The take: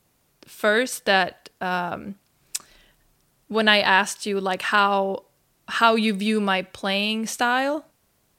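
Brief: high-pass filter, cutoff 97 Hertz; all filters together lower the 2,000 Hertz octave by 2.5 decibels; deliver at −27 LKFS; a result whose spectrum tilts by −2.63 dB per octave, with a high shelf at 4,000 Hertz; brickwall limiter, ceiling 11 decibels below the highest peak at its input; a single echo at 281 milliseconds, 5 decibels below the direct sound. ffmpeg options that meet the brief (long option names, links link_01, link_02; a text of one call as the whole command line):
ffmpeg -i in.wav -af "highpass=97,equalizer=frequency=2000:width_type=o:gain=-5.5,highshelf=frequency=4000:gain=9,alimiter=limit=-11dB:level=0:latency=1,aecho=1:1:281:0.562,volume=-3.5dB" out.wav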